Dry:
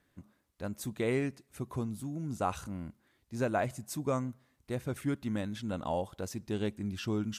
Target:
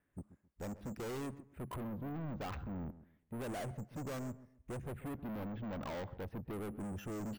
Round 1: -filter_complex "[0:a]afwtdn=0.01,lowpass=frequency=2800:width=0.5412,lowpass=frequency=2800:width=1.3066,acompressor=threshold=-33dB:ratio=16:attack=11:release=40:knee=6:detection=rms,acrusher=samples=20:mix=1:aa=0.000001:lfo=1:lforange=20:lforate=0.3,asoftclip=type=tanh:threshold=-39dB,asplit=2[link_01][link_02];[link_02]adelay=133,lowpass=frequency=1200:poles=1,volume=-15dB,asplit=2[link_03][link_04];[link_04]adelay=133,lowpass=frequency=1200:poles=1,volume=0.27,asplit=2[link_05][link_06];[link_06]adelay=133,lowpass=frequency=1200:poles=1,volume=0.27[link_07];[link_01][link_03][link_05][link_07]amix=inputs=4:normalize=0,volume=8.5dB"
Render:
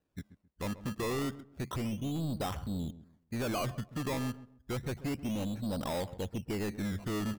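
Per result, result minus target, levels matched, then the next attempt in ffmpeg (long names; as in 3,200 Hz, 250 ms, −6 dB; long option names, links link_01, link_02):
sample-and-hold swept by an LFO: distortion +14 dB; soft clipping: distortion −5 dB
-filter_complex "[0:a]afwtdn=0.01,lowpass=frequency=2800:width=0.5412,lowpass=frequency=2800:width=1.3066,acompressor=threshold=-33dB:ratio=16:attack=11:release=40:knee=6:detection=rms,acrusher=samples=4:mix=1:aa=0.000001:lfo=1:lforange=4:lforate=0.3,asoftclip=type=tanh:threshold=-39dB,asplit=2[link_01][link_02];[link_02]adelay=133,lowpass=frequency=1200:poles=1,volume=-15dB,asplit=2[link_03][link_04];[link_04]adelay=133,lowpass=frequency=1200:poles=1,volume=0.27,asplit=2[link_05][link_06];[link_06]adelay=133,lowpass=frequency=1200:poles=1,volume=0.27[link_07];[link_01][link_03][link_05][link_07]amix=inputs=4:normalize=0,volume=8.5dB"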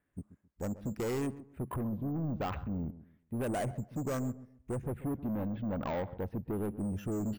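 soft clipping: distortion −5 dB
-filter_complex "[0:a]afwtdn=0.01,lowpass=frequency=2800:width=0.5412,lowpass=frequency=2800:width=1.3066,acompressor=threshold=-33dB:ratio=16:attack=11:release=40:knee=6:detection=rms,acrusher=samples=4:mix=1:aa=0.000001:lfo=1:lforange=4:lforate=0.3,asoftclip=type=tanh:threshold=-48.5dB,asplit=2[link_01][link_02];[link_02]adelay=133,lowpass=frequency=1200:poles=1,volume=-15dB,asplit=2[link_03][link_04];[link_04]adelay=133,lowpass=frequency=1200:poles=1,volume=0.27,asplit=2[link_05][link_06];[link_06]adelay=133,lowpass=frequency=1200:poles=1,volume=0.27[link_07];[link_01][link_03][link_05][link_07]amix=inputs=4:normalize=0,volume=8.5dB"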